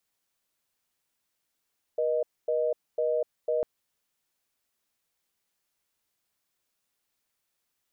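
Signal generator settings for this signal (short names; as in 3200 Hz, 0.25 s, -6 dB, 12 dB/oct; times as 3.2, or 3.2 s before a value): call progress tone reorder tone, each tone -26.5 dBFS 1.65 s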